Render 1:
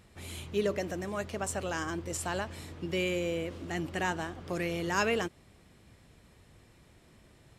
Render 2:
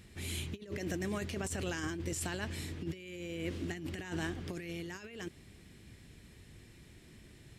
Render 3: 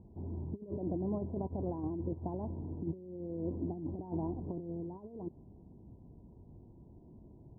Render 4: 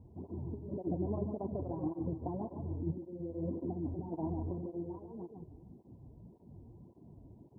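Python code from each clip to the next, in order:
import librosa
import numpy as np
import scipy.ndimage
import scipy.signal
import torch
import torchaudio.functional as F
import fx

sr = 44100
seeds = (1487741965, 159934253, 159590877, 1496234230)

y1 = fx.band_shelf(x, sr, hz=820.0, db=-8.5, octaves=1.7)
y1 = fx.over_compress(y1, sr, threshold_db=-38.0, ratio=-0.5)
y2 = scipy.signal.sosfilt(scipy.signal.cheby1(6, 3, 1000.0, 'lowpass', fs=sr, output='sos'), y1)
y2 = y2 * 10.0 ** (3.0 / 20.0)
y3 = fx.echo_feedback(y2, sr, ms=150, feedback_pct=31, wet_db=-6.5)
y3 = fx.flanger_cancel(y3, sr, hz=1.8, depth_ms=6.0)
y3 = y3 * 10.0 ** (2.5 / 20.0)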